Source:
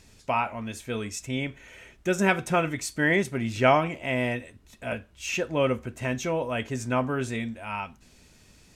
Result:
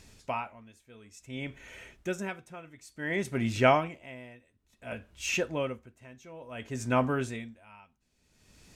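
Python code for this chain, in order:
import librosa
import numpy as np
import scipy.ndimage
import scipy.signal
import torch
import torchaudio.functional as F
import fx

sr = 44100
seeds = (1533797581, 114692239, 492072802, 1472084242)

y = x * 10.0 ** (-22 * (0.5 - 0.5 * np.cos(2.0 * np.pi * 0.57 * np.arange(len(x)) / sr)) / 20.0)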